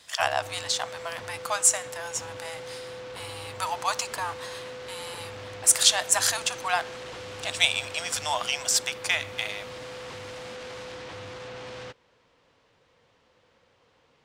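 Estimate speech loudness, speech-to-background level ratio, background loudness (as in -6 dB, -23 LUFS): -25.5 LUFS, 14.5 dB, -40.0 LUFS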